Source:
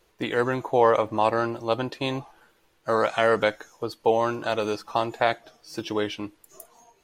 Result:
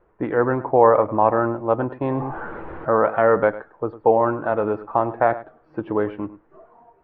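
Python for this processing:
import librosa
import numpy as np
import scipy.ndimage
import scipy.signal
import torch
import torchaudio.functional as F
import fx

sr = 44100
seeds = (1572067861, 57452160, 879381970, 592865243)

y = scipy.signal.sosfilt(scipy.signal.butter(4, 1500.0, 'lowpass', fs=sr, output='sos'), x)
y = y + 10.0 ** (-16.0 / 20.0) * np.pad(y, (int(103 * sr / 1000.0), 0))[:len(y)]
y = fx.env_flatten(y, sr, amount_pct=70, at=(2.05, 2.89))
y = F.gain(torch.from_numpy(y), 5.0).numpy()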